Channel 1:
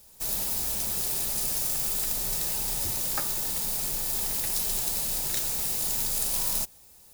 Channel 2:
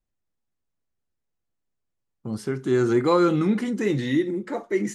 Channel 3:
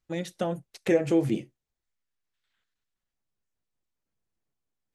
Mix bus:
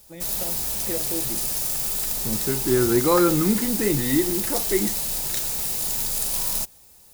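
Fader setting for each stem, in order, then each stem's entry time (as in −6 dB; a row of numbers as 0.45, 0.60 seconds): +2.5, +0.5, −9.0 decibels; 0.00, 0.00, 0.00 seconds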